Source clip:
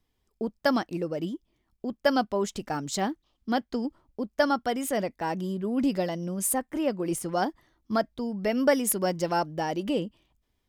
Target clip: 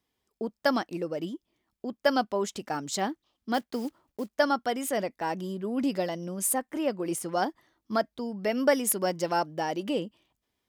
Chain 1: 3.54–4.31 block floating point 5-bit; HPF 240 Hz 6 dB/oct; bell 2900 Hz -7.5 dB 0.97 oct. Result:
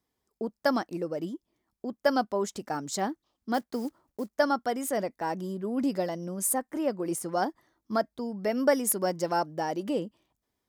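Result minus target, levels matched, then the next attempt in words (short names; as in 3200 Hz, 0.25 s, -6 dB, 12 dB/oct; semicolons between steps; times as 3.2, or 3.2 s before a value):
4000 Hz band -3.5 dB
3.54–4.31 block floating point 5-bit; HPF 240 Hz 6 dB/oct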